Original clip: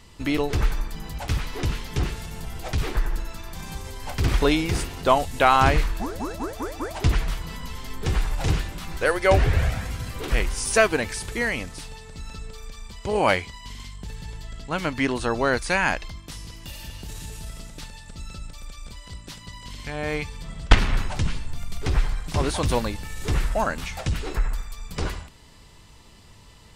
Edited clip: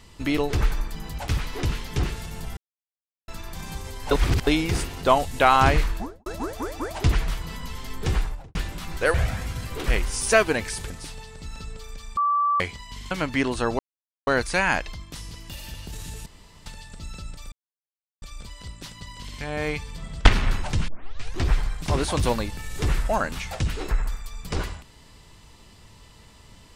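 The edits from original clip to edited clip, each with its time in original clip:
2.57–3.28 s: mute
4.11–4.47 s: reverse
5.91–6.26 s: studio fade out
8.12–8.55 s: studio fade out
9.14–9.58 s: delete
11.34–11.64 s: delete
12.91–13.34 s: bleep 1.16 kHz -18.5 dBFS
13.85–14.75 s: delete
15.43 s: insert silence 0.48 s
17.42–17.82 s: room tone
18.68 s: insert silence 0.70 s
21.34 s: tape start 0.59 s

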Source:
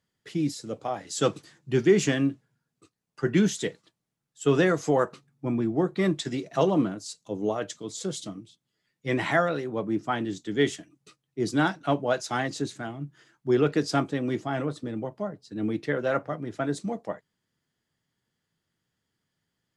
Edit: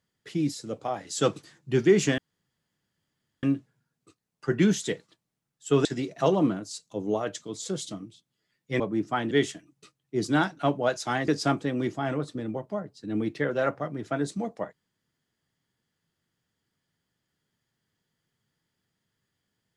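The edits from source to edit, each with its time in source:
2.18 s: insert room tone 1.25 s
4.60–6.20 s: delete
9.15–9.76 s: delete
10.27–10.55 s: delete
12.52–13.76 s: delete

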